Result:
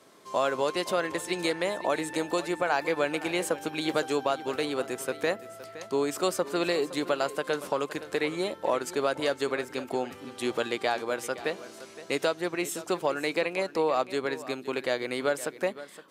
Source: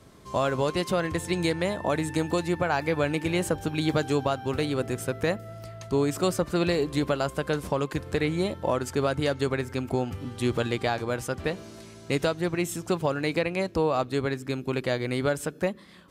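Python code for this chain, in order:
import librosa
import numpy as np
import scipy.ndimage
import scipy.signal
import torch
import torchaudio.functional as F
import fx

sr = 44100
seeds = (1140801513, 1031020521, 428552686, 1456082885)

p1 = scipy.signal.sosfilt(scipy.signal.butter(2, 350.0, 'highpass', fs=sr, output='sos'), x)
y = p1 + fx.echo_single(p1, sr, ms=516, db=-15.5, dry=0)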